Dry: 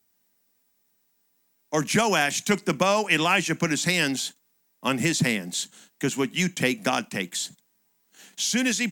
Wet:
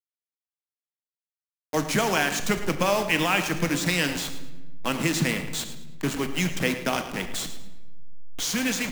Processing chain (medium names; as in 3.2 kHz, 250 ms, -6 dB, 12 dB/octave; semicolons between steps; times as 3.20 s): send-on-delta sampling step -26 dBFS; on a send: thinning echo 109 ms, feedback 27%, level -13.5 dB; on the sum: simulated room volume 680 m³, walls mixed, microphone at 0.57 m; trim -2 dB